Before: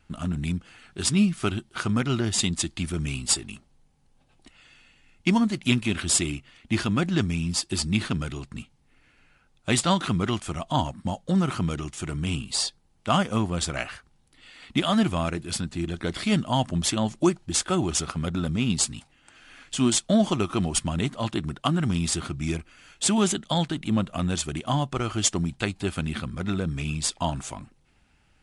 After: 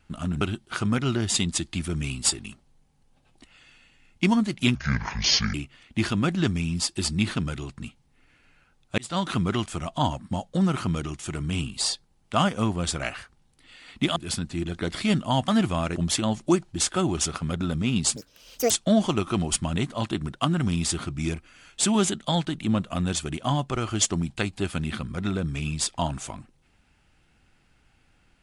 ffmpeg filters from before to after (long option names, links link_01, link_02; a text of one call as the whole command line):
ffmpeg -i in.wav -filter_complex "[0:a]asplit=10[link_01][link_02][link_03][link_04][link_05][link_06][link_07][link_08][link_09][link_10];[link_01]atrim=end=0.412[link_11];[link_02]atrim=start=1.448:end=5.794[link_12];[link_03]atrim=start=5.79:end=6.28,asetpts=PTS-STARTPTS,asetrate=27342,aresample=44100,atrim=end_sample=34853,asetpts=PTS-STARTPTS[link_13];[link_04]atrim=start=6.276:end=9.72,asetpts=PTS-STARTPTS,afade=type=out:start_time=3.44:duration=0.004:curve=hsin[link_14];[link_05]atrim=start=9.72:end=14.902,asetpts=PTS-STARTPTS,afade=type=in:duration=0.34[link_15];[link_06]atrim=start=15.378:end=16.702[link_16];[link_07]atrim=start=14.898:end=15.382[link_17];[link_08]atrim=start=16.698:end=18.904[link_18];[link_09]atrim=start=18.9:end=19.93,asetpts=PTS-STARTPTS,asetrate=83790,aresample=44100[link_19];[link_10]atrim=start=19.926[link_20];[link_11][link_12]acrossfade=duration=0.004:curve1=hsin:curve2=hsin[link_21];[link_21][link_13]acrossfade=duration=0.004:curve1=hsin:curve2=hsin[link_22];[link_14][link_15]concat=n=2:v=0:a=1[link_23];[link_22][link_23]acrossfade=duration=0.004:curve1=hsin:curve2=hsin[link_24];[link_24][link_16]acrossfade=duration=0.004:curve1=hsin:curve2=hsin[link_25];[link_25][link_17]acrossfade=duration=0.004:curve1=hsin:curve2=hsin[link_26];[link_26][link_18]acrossfade=duration=0.004:curve1=hsin:curve2=hsin[link_27];[link_27][link_19]acrossfade=duration=0.004:curve1=hsin:curve2=hsin[link_28];[link_28][link_20]acrossfade=duration=0.004:curve1=hsin:curve2=hsin" out.wav